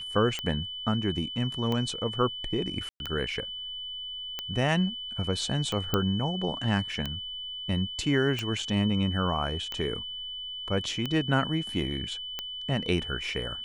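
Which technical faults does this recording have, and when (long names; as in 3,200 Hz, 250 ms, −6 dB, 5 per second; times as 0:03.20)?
scratch tick 45 rpm −17 dBFS
whistle 3,000 Hz −35 dBFS
0:02.89–0:03.00: drop-out 111 ms
0:05.94: click −11 dBFS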